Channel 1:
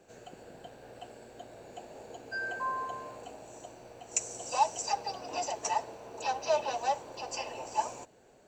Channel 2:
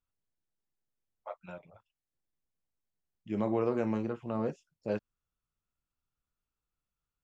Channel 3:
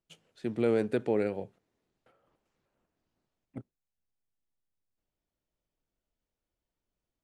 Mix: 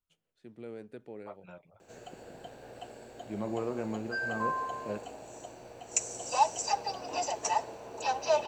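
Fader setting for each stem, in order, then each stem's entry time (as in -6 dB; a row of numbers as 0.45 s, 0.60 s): +1.5 dB, -4.5 dB, -17.0 dB; 1.80 s, 0.00 s, 0.00 s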